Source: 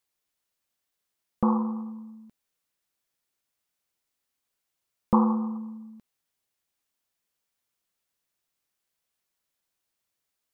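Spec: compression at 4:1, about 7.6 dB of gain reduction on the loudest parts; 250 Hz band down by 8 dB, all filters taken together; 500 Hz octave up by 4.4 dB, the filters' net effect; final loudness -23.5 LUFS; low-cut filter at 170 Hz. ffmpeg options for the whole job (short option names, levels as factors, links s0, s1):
-af "highpass=170,equalizer=f=250:t=o:g=-9,equalizer=f=500:t=o:g=7,acompressor=threshold=0.0447:ratio=4,volume=4.22"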